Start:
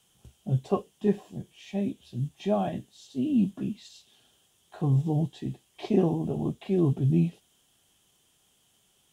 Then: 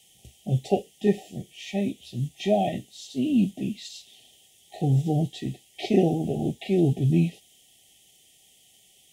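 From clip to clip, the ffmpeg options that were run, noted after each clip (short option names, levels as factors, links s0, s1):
-af "afftfilt=real='re*(1-between(b*sr/4096,820,1800))':imag='im*(1-between(b*sr/4096,820,1800))':win_size=4096:overlap=0.75,tiltshelf=f=730:g=-4,volume=1.88"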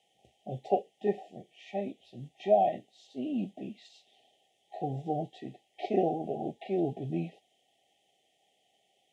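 -af "bandpass=f=790:t=q:w=1.4:csg=0,volume=1.19"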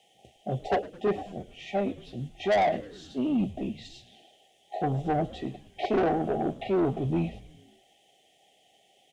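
-filter_complex "[0:a]asoftclip=type=tanh:threshold=0.0376,asplit=6[s0][s1][s2][s3][s4][s5];[s1]adelay=107,afreqshift=-110,volume=0.112[s6];[s2]adelay=214,afreqshift=-220,volume=0.0684[s7];[s3]adelay=321,afreqshift=-330,volume=0.0417[s8];[s4]adelay=428,afreqshift=-440,volume=0.0254[s9];[s5]adelay=535,afreqshift=-550,volume=0.0155[s10];[s0][s6][s7][s8][s9][s10]amix=inputs=6:normalize=0,volume=2.66"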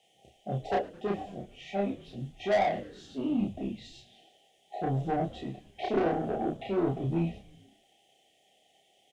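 -filter_complex "[0:a]asplit=2[s0][s1];[s1]adelay=30,volume=0.794[s2];[s0][s2]amix=inputs=2:normalize=0,volume=0.562"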